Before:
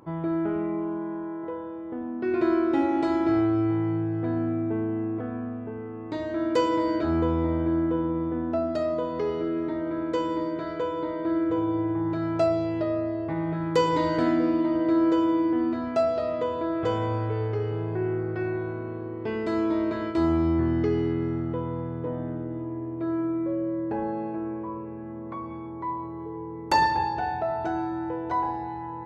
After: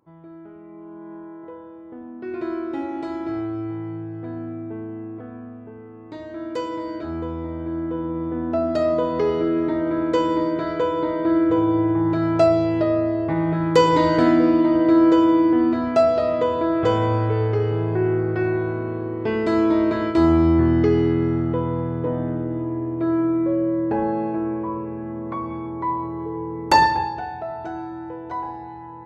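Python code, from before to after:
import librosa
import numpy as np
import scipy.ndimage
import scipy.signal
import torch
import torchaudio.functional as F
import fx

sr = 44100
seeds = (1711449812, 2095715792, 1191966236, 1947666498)

y = fx.gain(x, sr, db=fx.line((0.61, -15.0), (1.14, -4.5), (7.53, -4.5), (8.88, 7.0), (26.75, 7.0), (27.28, -2.5)))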